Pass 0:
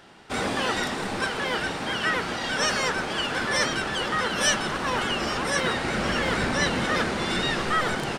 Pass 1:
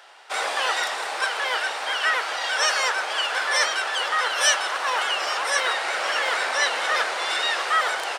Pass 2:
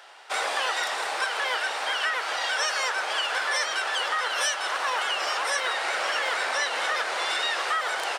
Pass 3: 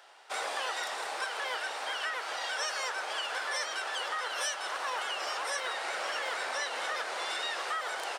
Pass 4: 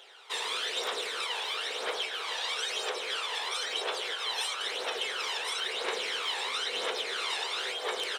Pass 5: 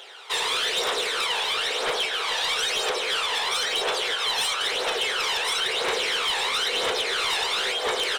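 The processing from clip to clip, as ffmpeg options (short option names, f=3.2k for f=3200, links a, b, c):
-af "highpass=f=580:w=0.5412,highpass=f=580:w=1.3066,volume=3.5dB"
-af "acompressor=threshold=-23dB:ratio=6"
-af "equalizer=f=2.2k:w=0.54:g=-3,volume=-5.5dB"
-af "afftfilt=real='re*lt(hypot(re,im),0.0562)':imag='im*lt(hypot(re,im),0.0562)':win_size=1024:overlap=0.75,superequalizer=7b=2.51:12b=1.58:13b=2.51,aphaser=in_gain=1:out_gain=1:delay=1.2:decay=0.57:speed=1:type=triangular"
-af "aeval=exprs='0.112*(cos(1*acos(clip(val(0)/0.112,-1,1)))-cos(1*PI/2))+0.0316*(cos(5*acos(clip(val(0)/0.112,-1,1)))-cos(5*PI/2))+0.00501*(cos(7*acos(clip(val(0)/0.112,-1,1)))-cos(7*PI/2))+0.00112*(cos(8*acos(clip(val(0)/0.112,-1,1)))-cos(8*PI/2))':c=same,volume=3dB"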